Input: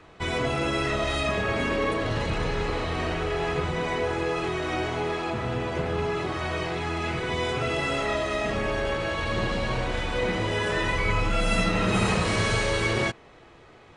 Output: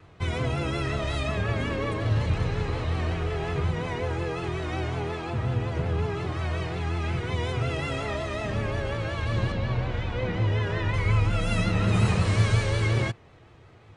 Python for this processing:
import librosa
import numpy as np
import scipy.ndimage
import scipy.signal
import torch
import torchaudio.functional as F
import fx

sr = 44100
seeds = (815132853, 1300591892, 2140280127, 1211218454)

y = fx.peak_eq(x, sr, hz=99.0, db=14.0, octaves=1.2)
y = fx.vibrato(y, sr, rate_hz=5.5, depth_cents=64.0)
y = fx.air_absorb(y, sr, metres=110.0, at=(9.52, 10.94))
y = y * 10.0 ** (-5.0 / 20.0)